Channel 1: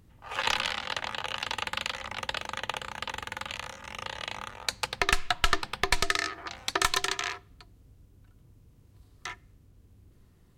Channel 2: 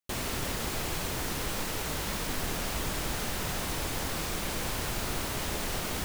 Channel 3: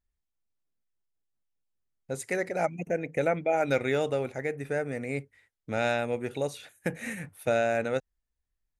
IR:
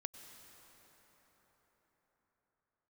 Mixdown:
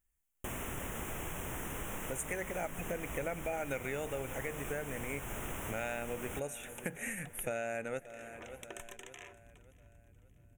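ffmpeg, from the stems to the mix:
-filter_complex "[0:a]equalizer=f=1300:w=1.5:g=-14,acompressor=threshold=0.0141:ratio=6,adelay=1950,volume=0.562,asplit=2[s0][s1];[s1]volume=0.075[s2];[1:a]adelay=350,volume=0.75,asplit=2[s3][s4];[s4]volume=0.112[s5];[2:a]highshelf=f=2600:g=12,volume=0.794,asplit=4[s6][s7][s8][s9];[s7]volume=0.237[s10];[s8]volume=0.0944[s11];[s9]apad=whole_len=552501[s12];[s0][s12]sidechaincompress=threshold=0.0224:ratio=8:attack=16:release=549[s13];[3:a]atrim=start_sample=2205[s14];[s10][s14]afir=irnorm=-1:irlink=0[s15];[s2][s5][s11]amix=inputs=3:normalize=0,aecho=0:1:577|1154|1731|2308|2885|3462:1|0.42|0.176|0.0741|0.0311|0.0131[s16];[s13][s3][s6][s15][s16]amix=inputs=5:normalize=0,asuperstop=centerf=4500:order=4:qfactor=1.2,acompressor=threshold=0.0126:ratio=3"

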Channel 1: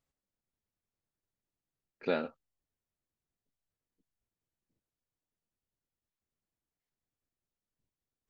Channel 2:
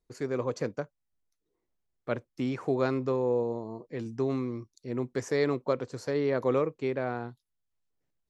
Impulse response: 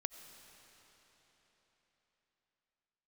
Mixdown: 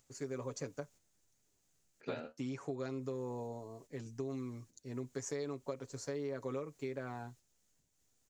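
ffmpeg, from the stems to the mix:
-filter_complex "[0:a]equalizer=f=1100:w=7:g=-5,flanger=delay=7.7:depth=8.5:regen=66:speed=0.73:shape=triangular,acompressor=mode=upward:threshold=0.00224:ratio=2.5,volume=0.841[s0];[1:a]aecho=1:1:7.2:0.64,volume=0.316,asplit=2[s1][s2];[s2]apad=whole_len=365790[s3];[s0][s3]sidechaingate=range=0.501:threshold=0.00126:ratio=16:detection=peak[s4];[s4][s1]amix=inputs=2:normalize=0,equalizer=f=6800:t=o:w=0.71:g=12.5,acompressor=threshold=0.0158:ratio=6"

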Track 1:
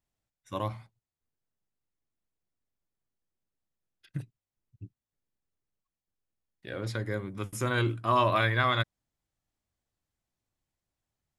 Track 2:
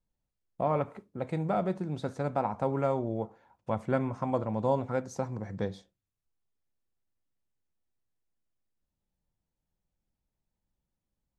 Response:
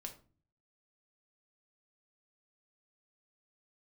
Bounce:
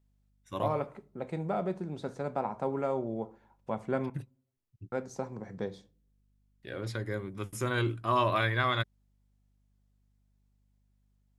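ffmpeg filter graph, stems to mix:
-filter_complex "[0:a]volume=0.75[s0];[1:a]highpass=130,aeval=exprs='val(0)+0.000501*(sin(2*PI*50*n/s)+sin(2*PI*2*50*n/s)/2+sin(2*PI*3*50*n/s)/3+sin(2*PI*4*50*n/s)/4+sin(2*PI*5*50*n/s)/5)':c=same,volume=0.531,asplit=3[s1][s2][s3];[s1]atrim=end=4.1,asetpts=PTS-STARTPTS,afade=t=out:st=4.096:d=0.004:c=hsin[s4];[s2]atrim=start=4.1:end=4.92,asetpts=PTS-STARTPTS,volume=0[s5];[s3]atrim=start=4.92,asetpts=PTS-STARTPTS,afade=t=in:d=0.004:c=hsin[s6];[s4][s5][s6]concat=n=3:v=0:a=1,asplit=2[s7][s8];[s8]volume=0.631[s9];[2:a]atrim=start_sample=2205[s10];[s9][s10]afir=irnorm=-1:irlink=0[s11];[s0][s7][s11]amix=inputs=3:normalize=0,equalizer=f=390:w=6.9:g=4"

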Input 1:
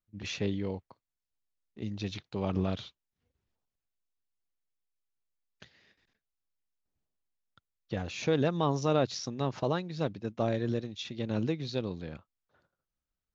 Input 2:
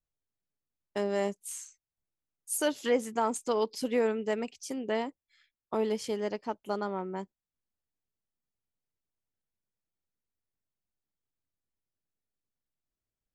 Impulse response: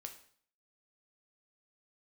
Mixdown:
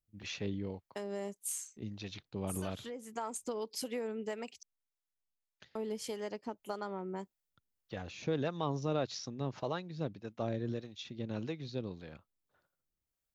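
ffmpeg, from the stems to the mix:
-filter_complex "[0:a]acontrast=48,volume=0.316,asplit=2[s0][s1];[1:a]highshelf=f=8100:g=8,acompressor=threshold=0.0251:ratio=6,volume=0.944,asplit=3[s2][s3][s4];[s2]atrim=end=4.63,asetpts=PTS-STARTPTS,afade=t=out:st=4.626:d=0.004:c=hsin[s5];[s3]atrim=start=4.63:end=5.75,asetpts=PTS-STARTPTS,volume=0[s6];[s4]atrim=start=5.75,asetpts=PTS-STARTPTS,afade=t=in:d=0.004:c=hsin[s7];[s5][s6][s7]concat=n=3:v=0:a=1[s8];[s1]apad=whole_len=588555[s9];[s8][s9]sidechaincompress=threshold=0.0112:ratio=5:attack=27:release=765[s10];[s0][s10]amix=inputs=2:normalize=0,acrossover=split=500[s11][s12];[s11]aeval=exprs='val(0)*(1-0.5/2+0.5/2*cos(2*PI*1.7*n/s))':c=same[s13];[s12]aeval=exprs='val(0)*(1-0.5/2-0.5/2*cos(2*PI*1.7*n/s))':c=same[s14];[s13][s14]amix=inputs=2:normalize=0"

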